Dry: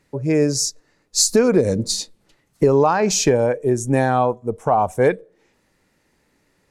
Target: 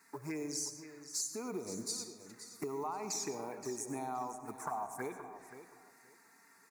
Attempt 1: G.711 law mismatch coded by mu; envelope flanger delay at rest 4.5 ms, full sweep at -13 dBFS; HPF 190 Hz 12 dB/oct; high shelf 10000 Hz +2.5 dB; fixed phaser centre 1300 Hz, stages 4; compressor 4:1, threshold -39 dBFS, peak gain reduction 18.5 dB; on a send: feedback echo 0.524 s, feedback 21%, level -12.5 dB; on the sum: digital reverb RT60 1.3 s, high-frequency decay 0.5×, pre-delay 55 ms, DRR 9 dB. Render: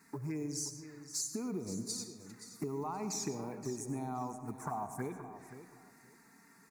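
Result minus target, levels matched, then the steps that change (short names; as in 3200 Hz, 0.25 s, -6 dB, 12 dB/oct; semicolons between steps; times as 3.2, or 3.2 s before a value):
250 Hz band +3.5 dB
change: HPF 460 Hz 12 dB/oct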